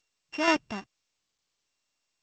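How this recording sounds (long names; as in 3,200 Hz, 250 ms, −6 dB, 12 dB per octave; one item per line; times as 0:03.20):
a buzz of ramps at a fixed pitch in blocks of 16 samples
sample-and-hold tremolo 4.2 Hz, depth 75%
G.722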